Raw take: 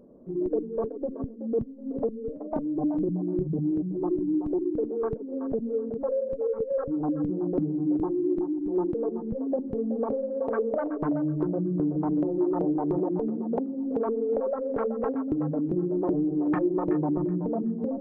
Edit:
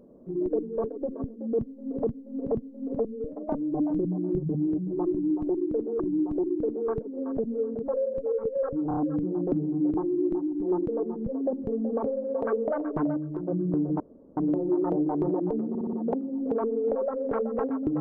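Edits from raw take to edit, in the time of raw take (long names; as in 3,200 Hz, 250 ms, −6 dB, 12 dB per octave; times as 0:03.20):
0:01.57–0:02.05: repeat, 3 plays
0:04.15–0:05.04: repeat, 2 plays
0:07.03: stutter 0.03 s, 4 plays
0:11.23–0:11.54: clip gain −6 dB
0:12.06: splice in room tone 0.37 s
0:13.38: stutter 0.06 s, 5 plays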